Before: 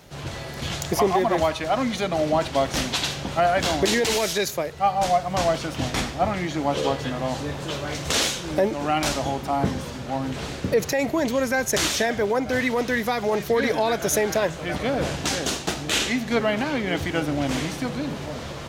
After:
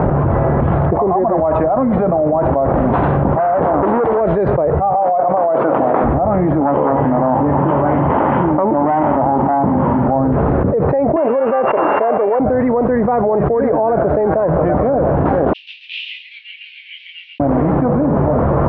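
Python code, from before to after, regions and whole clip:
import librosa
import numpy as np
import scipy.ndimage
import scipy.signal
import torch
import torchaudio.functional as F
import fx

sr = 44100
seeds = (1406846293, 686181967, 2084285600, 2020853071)

y = fx.chain(x, sr, fx.notch_comb(f0_hz=1300.0),
    fx.transformer_sat(knee_hz=2600.0), at=(3.33, 4.21))
y = fx.chain(y, sr, fx.highpass(hz=360.0, slope=12),
    fx.over_compress(threshold_db=-28.0, ratio=-1.0), at=(4.94, 6.04))
y = fx.chain(y, sr, fx.self_delay(depth_ms=0.39),
    fx.cabinet(low_hz=100.0, low_slope=12, high_hz=3200.0, hz=(270.0, 470.0, 900.0, 2000.0, 3100.0), db=(5, -5, 8, 5, 10)), at=(6.61, 10.08))
y = fx.chain(y, sr, fx.sample_sort(block=16),
    fx.highpass(hz=500.0, slope=12),
    fx.high_shelf(hz=7100.0, db=-7.5), at=(11.16, 12.4))
y = fx.chain(y, sr, fx.steep_highpass(hz=2600.0, slope=72),
    fx.echo_single(ms=137, db=-5.5),
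    fx.detune_double(cents=18), at=(15.53, 17.4))
y = scipy.signal.sosfilt(scipy.signal.cheby2(4, 80, 6500.0, 'lowpass', fs=sr, output='sos'), y)
y = fx.dynamic_eq(y, sr, hz=600.0, q=1.2, threshold_db=-34.0, ratio=4.0, max_db=5)
y = fx.env_flatten(y, sr, amount_pct=100)
y = y * librosa.db_to_amplitude(-1.5)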